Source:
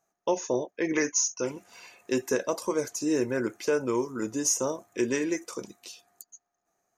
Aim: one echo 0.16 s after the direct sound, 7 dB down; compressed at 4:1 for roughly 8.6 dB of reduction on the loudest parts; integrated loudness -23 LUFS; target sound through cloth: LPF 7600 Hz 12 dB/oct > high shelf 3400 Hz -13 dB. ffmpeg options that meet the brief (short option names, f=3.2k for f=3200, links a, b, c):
-af "acompressor=threshold=-32dB:ratio=4,lowpass=7.6k,highshelf=f=3.4k:g=-13,aecho=1:1:160:0.447,volume=14dB"